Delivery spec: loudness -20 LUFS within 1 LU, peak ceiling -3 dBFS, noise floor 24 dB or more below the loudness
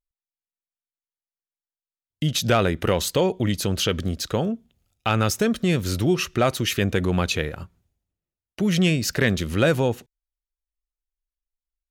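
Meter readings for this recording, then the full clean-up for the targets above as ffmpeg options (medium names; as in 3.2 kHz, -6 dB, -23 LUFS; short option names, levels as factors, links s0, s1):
loudness -23.0 LUFS; peak level -8.0 dBFS; loudness target -20.0 LUFS
-> -af "volume=1.41"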